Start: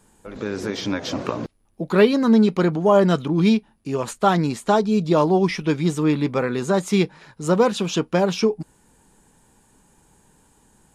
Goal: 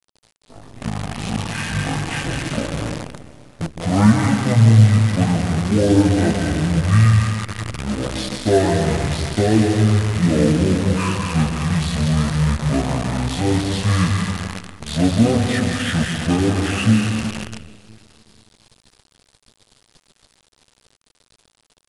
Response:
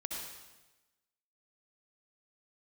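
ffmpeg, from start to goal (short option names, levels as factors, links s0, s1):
-filter_complex "[0:a]asplit=2[s0][s1];[1:a]atrim=start_sample=2205,highshelf=f=3600:g=5.5,adelay=9[s2];[s1][s2]afir=irnorm=-1:irlink=0,volume=0.944[s3];[s0][s3]amix=inputs=2:normalize=0,acrusher=bits=5:dc=4:mix=0:aa=0.000001,asetrate=22050,aresample=44100,volume=0.891"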